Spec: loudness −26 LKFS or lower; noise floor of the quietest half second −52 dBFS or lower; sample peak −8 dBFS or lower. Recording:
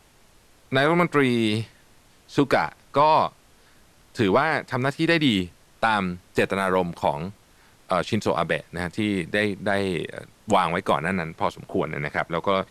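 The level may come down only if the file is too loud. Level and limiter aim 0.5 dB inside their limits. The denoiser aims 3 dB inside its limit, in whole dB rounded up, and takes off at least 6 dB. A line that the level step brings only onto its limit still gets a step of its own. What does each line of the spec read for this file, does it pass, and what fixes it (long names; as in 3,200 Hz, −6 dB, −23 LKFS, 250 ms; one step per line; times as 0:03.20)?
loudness −23.5 LKFS: out of spec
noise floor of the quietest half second −55 dBFS: in spec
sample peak −9.0 dBFS: in spec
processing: level −3 dB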